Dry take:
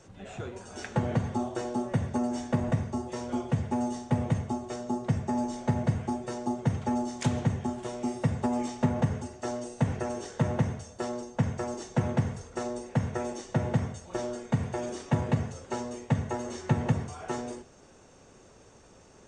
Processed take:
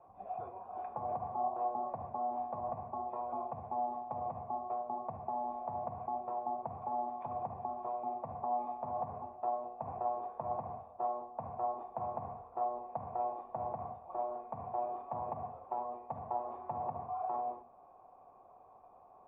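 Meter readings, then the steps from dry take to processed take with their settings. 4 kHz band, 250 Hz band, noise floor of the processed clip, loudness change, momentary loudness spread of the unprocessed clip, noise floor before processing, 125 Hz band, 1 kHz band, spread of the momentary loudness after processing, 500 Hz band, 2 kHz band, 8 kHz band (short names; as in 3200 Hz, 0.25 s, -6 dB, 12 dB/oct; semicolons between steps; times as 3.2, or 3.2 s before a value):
under -35 dB, -21.5 dB, -59 dBFS, -8.0 dB, 7 LU, -55 dBFS, -24.0 dB, +2.0 dB, 6 LU, -6.5 dB, under -25 dB, under -35 dB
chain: limiter -25 dBFS, peak gain reduction 11 dB; vocal tract filter a; notches 60/120/180/240 Hz; gain +10.5 dB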